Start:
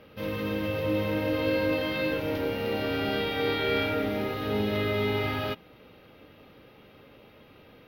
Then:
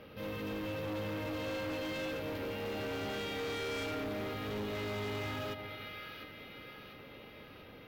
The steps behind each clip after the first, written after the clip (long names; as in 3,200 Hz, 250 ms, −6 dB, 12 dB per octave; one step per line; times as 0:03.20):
echo with a time of its own for lows and highs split 1,300 Hz, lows 146 ms, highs 697 ms, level −13 dB
gain into a clipping stage and back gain 29 dB
brickwall limiter −35.5 dBFS, peak gain reduction 6.5 dB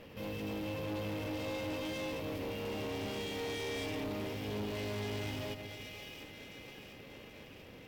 lower of the sound and its delayed copy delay 0.37 ms
dynamic equaliser 1,400 Hz, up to −5 dB, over −54 dBFS, Q 1.1
level +1 dB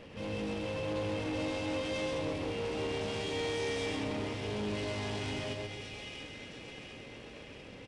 single-tap delay 129 ms −4 dB
downsampling to 22,050 Hz
level +2 dB